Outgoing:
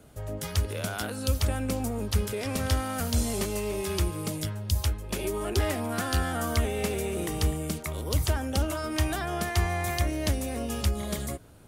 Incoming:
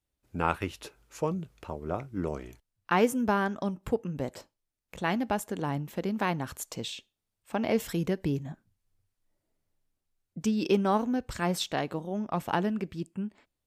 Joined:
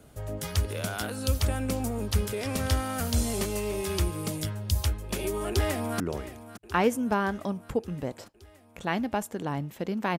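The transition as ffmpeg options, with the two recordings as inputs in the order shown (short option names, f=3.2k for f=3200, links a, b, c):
-filter_complex "[0:a]apad=whole_dur=10.18,atrim=end=10.18,atrim=end=6.002[a];[1:a]atrim=start=2.168:end=6.35[b];[a][b]acrossfade=d=0.004:c1=hsin:c2=hsin,asplit=2[c][d];[d]afade=t=in:st=5.49:d=0.01,afade=t=out:st=6:d=0.01,aecho=0:1:570|1140|1710|2280|2850|3420|3990|4560|5130:0.188365|0.131855|0.0922988|0.0646092|0.0452264|0.0316585|0.0221609|0.0155127|0.0108589[e];[c][e]amix=inputs=2:normalize=0"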